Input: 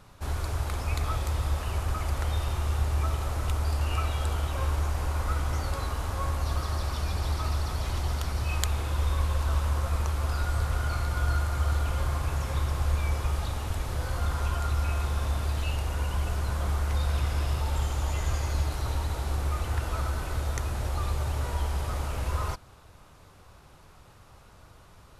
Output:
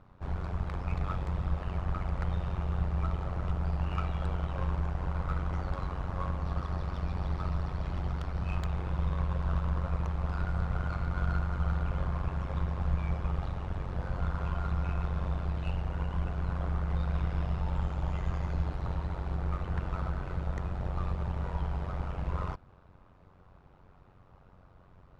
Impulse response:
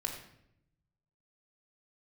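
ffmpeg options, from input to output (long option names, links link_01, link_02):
-af "tremolo=f=92:d=0.788,highshelf=frequency=2100:gain=7.5,adynamicsmooth=sensitivity=1:basefreq=1300"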